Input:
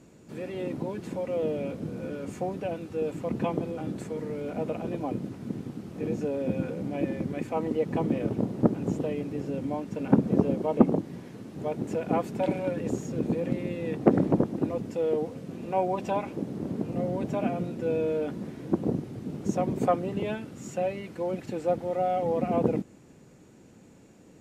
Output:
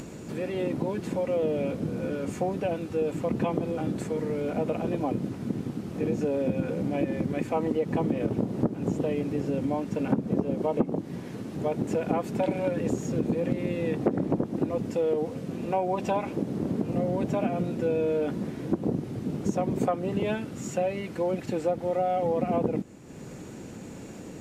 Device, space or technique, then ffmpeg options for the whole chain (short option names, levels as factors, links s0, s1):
upward and downward compression: -af "acompressor=mode=upward:threshold=0.0158:ratio=2.5,acompressor=threshold=0.0447:ratio=5,volume=1.68"